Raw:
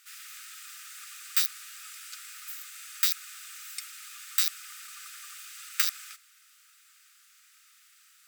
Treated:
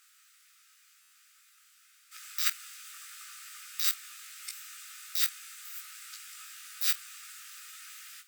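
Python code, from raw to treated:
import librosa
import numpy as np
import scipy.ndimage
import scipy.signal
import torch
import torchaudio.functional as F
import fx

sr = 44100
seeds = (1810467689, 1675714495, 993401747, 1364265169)

y = np.flip(x).copy()
y = fx.room_early_taps(y, sr, ms=(18, 46), db=(-3.5, -17.5))
y = fx.buffer_glitch(y, sr, at_s=(1.01,), block=512, repeats=8)
y = F.gain(torch.from_numpy(y), -4.0).numpy()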